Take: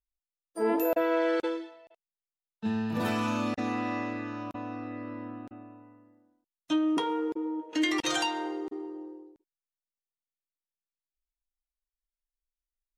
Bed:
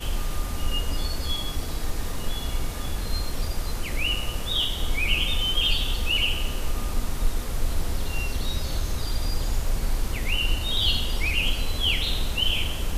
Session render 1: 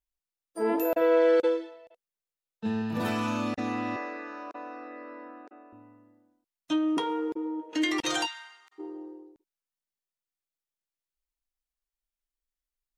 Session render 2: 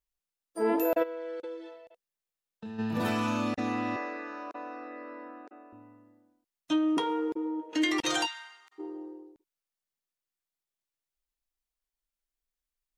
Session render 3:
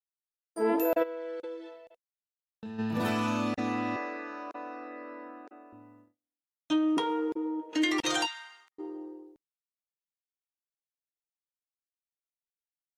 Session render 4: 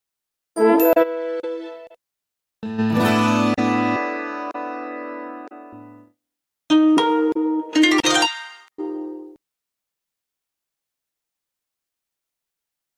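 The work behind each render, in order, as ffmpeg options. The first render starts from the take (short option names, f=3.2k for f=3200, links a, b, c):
-filter_complex "[0:a]asettb=1/sr,asplit=3[a][b][c];[a]atrim=end=1.014[d];[b]atrim=start=1.01:end=2.82,asetpts=PTS-STARTPTS,afade=t=in:d=0.004:c=qsin,afade=t=out:st=1.806:d=0.004:c=qsin,equalizer=f=500:w=5.2:g=9[e];[c]atrim=start=2.816[f];[d][e]acrossfade=d=0.004:c1=hsin:c2=qsin[g];[g][f]acrossfade=d=0.004:c1=qsin:c2=hsin,asettb=1/sr,asplit=3[h][i][j];[h]atrim=end=3.964[k];[i]atrim=start=3.96:end=5.73,asetpts=PTS-STARTPTS,afade=t=in:d=0.004:c=qsin,afade=t=out:st=1.766:d=0.004:c=qsin,highpass=f=360:w=0.5412,highpass=f=360:w=1.3066,equalizer=f=440:t=q:w=4:g=3,equalizer=f=1.6k:t=q:w=4:g=4,equalizer=f=3.2k:t=q:w=4:g=-10,lowpass=f=6.5k:w=0.5412,lowpass=f=6.5k:w=1.3066[l];[j]atrim=start=5.726[m];[k][l]acrossfade=d=0.004:c1=hsin:c2=qsin[n];[n][m]acrossfade=d=0.004:c1=qsin:c2=hsin,asplit=3[o][p][q];[o]afade=t=out:st=8.25:d=0.02[r];[p]highpass=f=1.4k:w=0.5412,highpass=f=1.4k:w=1.3066,afade=t=in:st=8.25:d=0.02,afade=t=out:st=8.78:d=0.02[s];[q]afade=t=in:st=8.78:d=0.02[t];[r][s][t]amix=inputs=3:normalize=0"
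-filter_complex "[0:a]asplit=3[a][b][c];[a]afade=t=out:st=1.02:d=0.02[d];[b]acompressor=threshold=-39dB:ratio=4:attack=3.2:release=140:knee=1:detection=peak,afade=t=in:st=1.02:d=0.02,afade=t=out:st=2.78:d=0.02[e];[c]afade=t=in:st=2.78:d=0.02[f];[d][e][f]amix=inputs=3:normalize=0"
-af "agate=range=-32dB:threshold=-57dB:ratio=16:detection=peak"
-af "volume=12dB,alimiter=limit=-3dB:level=0:latency=1"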